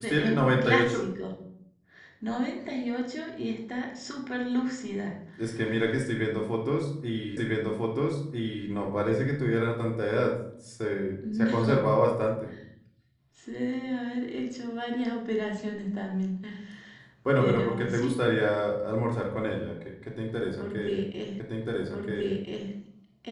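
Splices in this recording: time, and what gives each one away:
7.37 repeat of the last 1.3 s
21.4 repeat of the last 1.33 s

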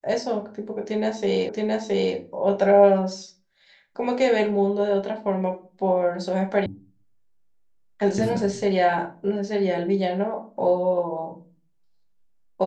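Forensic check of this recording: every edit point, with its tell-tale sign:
1.49 repeat of the last 0.67 s
6.66 sound cut off

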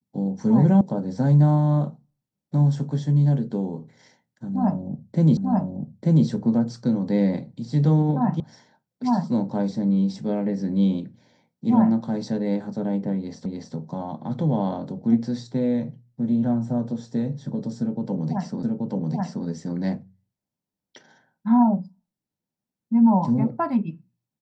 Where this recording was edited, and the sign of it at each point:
0.81 sound cut off
5.37 repeat of the last 0.89 s
8.4 sound cut off
13.46 repeat of the last 0.29 s
18.63 repeat of the last 0.83 s

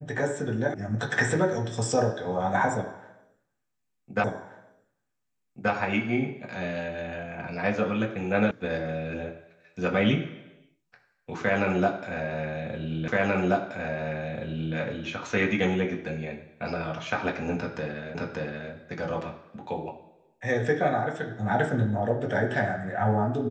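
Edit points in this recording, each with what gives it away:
0.74 sound cut off
4.24 repeat of the last 1.48 s
8.51 sound cut off
13.08 repeat of the last 1.68 s
18.15 repeat of the last 0.58 s

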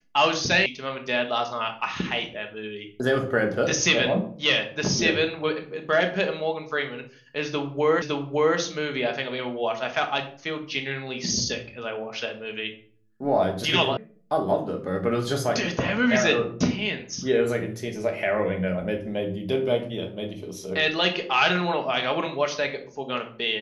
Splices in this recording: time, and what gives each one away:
0.66 sound cut off
8.02 repeat of the last 0.56 s
13.97 sound cut off

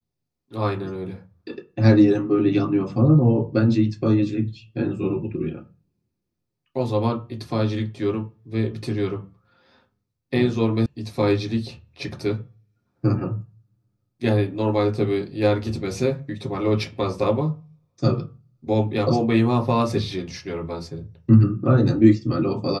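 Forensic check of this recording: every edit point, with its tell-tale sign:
10.86 sound cut off

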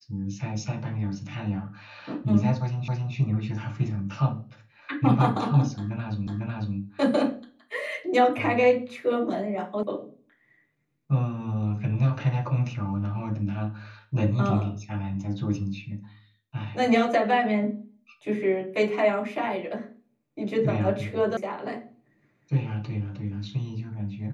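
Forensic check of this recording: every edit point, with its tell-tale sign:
2.88 repeat of the last 0.27 s
6.27 repeat of the last 0.5 s
9.83 sound cut off
21.37 sound cut off

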